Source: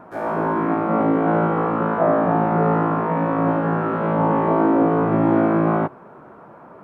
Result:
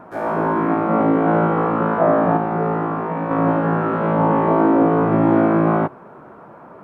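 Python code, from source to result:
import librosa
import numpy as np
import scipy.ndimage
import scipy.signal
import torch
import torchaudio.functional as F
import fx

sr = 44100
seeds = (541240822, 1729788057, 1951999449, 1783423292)

y = fx.comb_fb(x, sr, f0_hz=64.0, decay_s=0.23, harmonics='all', damping=0.0, mix_pct=60, at=(2.37, 3.31))
y = F.gain(torch.from_numpy(y), 2.0).numpy()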